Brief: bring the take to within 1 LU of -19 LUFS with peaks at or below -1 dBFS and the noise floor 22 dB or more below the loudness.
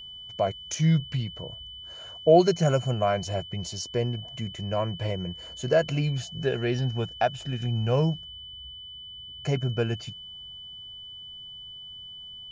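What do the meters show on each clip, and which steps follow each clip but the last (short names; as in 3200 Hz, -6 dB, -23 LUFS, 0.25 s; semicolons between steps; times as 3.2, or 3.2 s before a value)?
steady tone 3000 Hz; tone level -40 dBFS; loudness -27.0 LUFS; peak -7.5 dBFS; loudness target -19.0 LUFS
-> notch 3000 Hz, Q 30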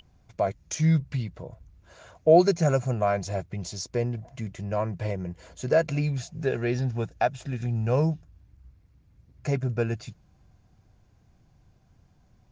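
steady tone none; loudness -27.0 LUFS; peak -7.5 dBFS; loudness target -19.0 LUFS
-> gain +8 dB; limiter -1 dBFS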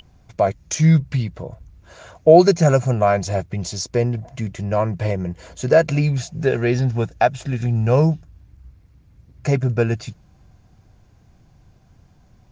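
loudness -19.5 LUFS; peak -1.0 dBFS; noise floor -54 dBFS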